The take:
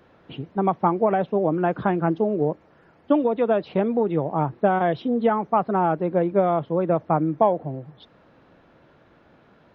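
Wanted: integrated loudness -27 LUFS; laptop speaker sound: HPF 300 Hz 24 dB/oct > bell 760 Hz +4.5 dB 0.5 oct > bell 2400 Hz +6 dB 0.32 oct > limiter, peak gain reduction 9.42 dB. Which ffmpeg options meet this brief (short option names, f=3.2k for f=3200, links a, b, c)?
-af "highpass=f=300:w=0.5412,highpass=f=300:w=1.3066,equalizer=f=760:t=o:w=0.5:g=4.5,equalizer=f=2.4k:t=o:w=0.32:g=6,volume=-2.5dB,alimiter=limit=-16dB:level=0:latency=1"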